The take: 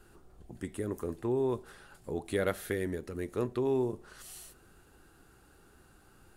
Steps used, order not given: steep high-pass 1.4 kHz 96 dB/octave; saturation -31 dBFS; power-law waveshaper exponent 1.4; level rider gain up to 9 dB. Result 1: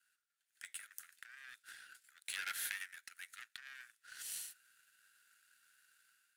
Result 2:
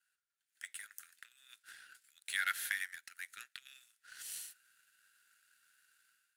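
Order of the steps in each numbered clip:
saturation > steep high-pass > power-law waveshaper > level rider; steep high-pass > saturation > level rider > power-law waveshaper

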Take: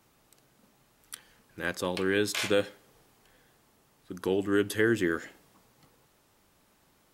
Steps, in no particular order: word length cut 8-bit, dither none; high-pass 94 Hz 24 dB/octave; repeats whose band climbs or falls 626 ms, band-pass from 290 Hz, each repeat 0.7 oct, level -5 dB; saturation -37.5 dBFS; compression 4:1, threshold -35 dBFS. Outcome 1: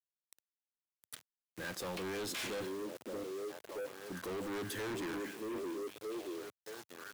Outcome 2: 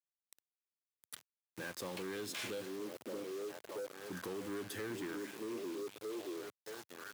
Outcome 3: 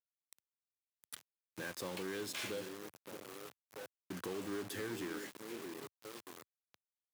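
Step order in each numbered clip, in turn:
repeats whose band climbs or falls > word length cut > high-pass > saturation > compression; repeats whose band climbs or falls > compression > word length cut > saturation > high-pass; compression > saturation > repeats whose band climbs or falls > word length cut > high-pass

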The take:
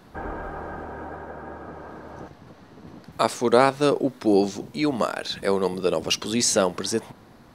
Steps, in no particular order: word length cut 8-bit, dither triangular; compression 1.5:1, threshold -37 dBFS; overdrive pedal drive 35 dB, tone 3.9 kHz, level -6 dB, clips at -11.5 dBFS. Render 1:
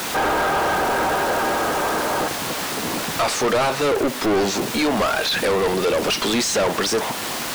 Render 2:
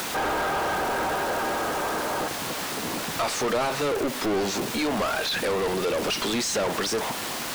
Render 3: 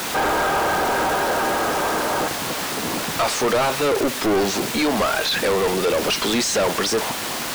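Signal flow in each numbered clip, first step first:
word length cut > compression > overdrive pedal; word length cut > overdrive pedal > compression; compression > word length cut > overdrive pedal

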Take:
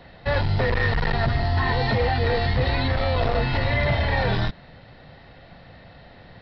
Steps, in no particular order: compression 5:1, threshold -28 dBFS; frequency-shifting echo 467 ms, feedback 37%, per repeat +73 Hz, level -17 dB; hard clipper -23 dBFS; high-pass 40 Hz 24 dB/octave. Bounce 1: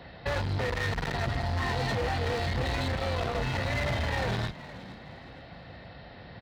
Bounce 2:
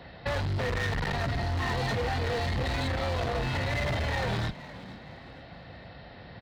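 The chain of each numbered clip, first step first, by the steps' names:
hard clipper > compression > high-pass > frequency-shifting echo; high-pass > hard clipper > compression > frequency-shifting echo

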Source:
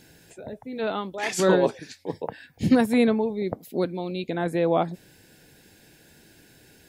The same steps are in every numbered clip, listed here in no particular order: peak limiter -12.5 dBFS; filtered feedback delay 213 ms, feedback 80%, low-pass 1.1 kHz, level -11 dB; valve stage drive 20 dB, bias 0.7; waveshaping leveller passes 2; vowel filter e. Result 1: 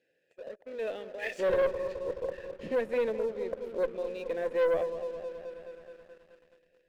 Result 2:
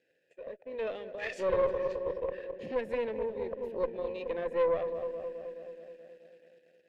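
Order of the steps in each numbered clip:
peak limiter > vowel filter > valve stage > filtered feedback delay > waveshaping leveller; filtered feedback delay > waveshaping leveller > peak limiter > vowel filter > valve stage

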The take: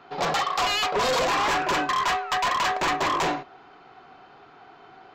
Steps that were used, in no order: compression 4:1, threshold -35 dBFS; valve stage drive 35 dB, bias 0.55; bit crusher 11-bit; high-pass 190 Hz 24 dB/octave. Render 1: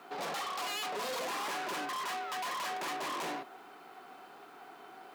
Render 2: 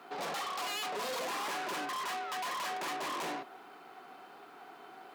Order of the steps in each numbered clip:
valve stage > compression > high-pass > bit crusher; bit crusher > valve stage > compression > high-pass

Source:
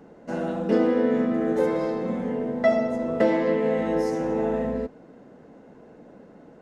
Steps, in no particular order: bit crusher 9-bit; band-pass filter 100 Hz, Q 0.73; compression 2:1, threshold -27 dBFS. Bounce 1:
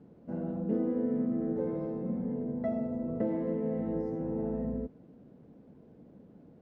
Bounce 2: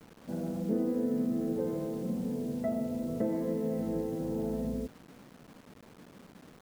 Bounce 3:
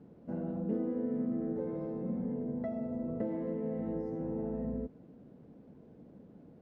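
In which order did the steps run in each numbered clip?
bit crusher > band-pass filter > compression; band-pass filter > bit crusher > compression; bit crusher > compression > band-pass filter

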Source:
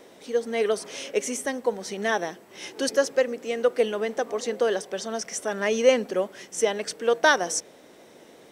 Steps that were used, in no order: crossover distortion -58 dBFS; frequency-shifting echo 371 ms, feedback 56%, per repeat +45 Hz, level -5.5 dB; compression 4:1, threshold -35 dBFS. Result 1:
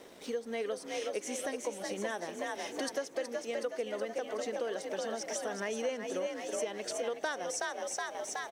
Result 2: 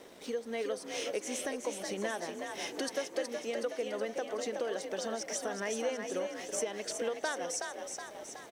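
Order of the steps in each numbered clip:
frequency-shifting echo > crossover distortion > compression; crossover distortion > compression > frequency-shifting echo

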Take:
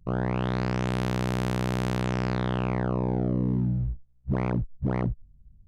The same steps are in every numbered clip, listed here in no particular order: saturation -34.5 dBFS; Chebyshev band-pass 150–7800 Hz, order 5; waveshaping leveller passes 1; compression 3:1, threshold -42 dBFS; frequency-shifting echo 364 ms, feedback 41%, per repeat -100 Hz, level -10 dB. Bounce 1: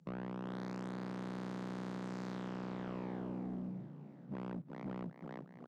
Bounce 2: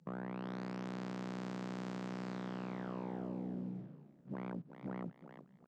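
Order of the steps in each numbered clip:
frequency-shifting echo > compression > Chebyshev band-pass > saturation > waveshaping leveller; compression > saturation > frequency-shifting echo > Chebyshev band-pass > waveshaping leveller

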